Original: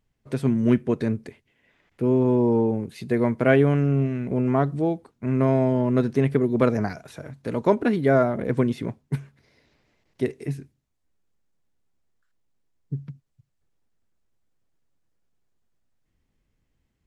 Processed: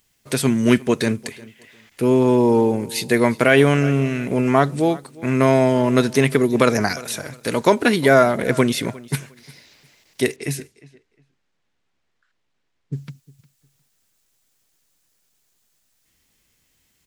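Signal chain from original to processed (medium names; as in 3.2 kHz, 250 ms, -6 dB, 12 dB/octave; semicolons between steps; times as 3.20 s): tilt EQ +2 dB/octave; on a send: feedback delay 356 ms, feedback 23%, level -21.5 dB; 10.36–12.97 s: on the sum: level-controlled noise filter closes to 2.6 kHz, open at -33.5 dBFS; treble shelf 2.4 kHz +10 dB; loudness maximiser +8.5 dB; trim -1 dB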